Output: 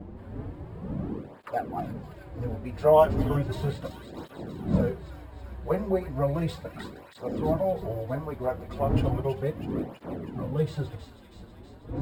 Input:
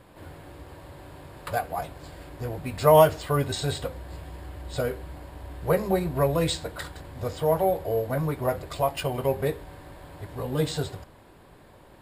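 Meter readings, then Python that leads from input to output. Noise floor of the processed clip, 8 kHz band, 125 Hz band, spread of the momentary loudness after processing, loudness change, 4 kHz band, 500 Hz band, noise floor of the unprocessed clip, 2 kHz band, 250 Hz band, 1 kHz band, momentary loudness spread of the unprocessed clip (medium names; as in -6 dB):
-50 dBFS, under -15 dB, 0.0 dB, 16 LU, -3.0 dB, -11.5 dB, -2.5 dB, -52 dBFS, -7.0 dB, +1.5 dB, -4.0 dB, 21 LU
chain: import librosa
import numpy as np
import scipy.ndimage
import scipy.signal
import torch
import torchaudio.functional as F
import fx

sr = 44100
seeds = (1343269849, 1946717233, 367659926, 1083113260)

y = scipy.ndimage.median_filter(x, 5, mode='constant')
y = fx.dmg_wind(y, sr, seeds[0], corner_hz=250.0, level_db=-31.0)
y = fx.high_shelf(y, sr, hz=2000.0, db=-10.5)
y = fx.echo_wet_highpass(y, sr, ms=322, feedback_pct=66, hz=1900.0, wet_db=-7.0)
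y = fx.flanger_cancel(y, sr, hz=0.35, depth_ms=7.7)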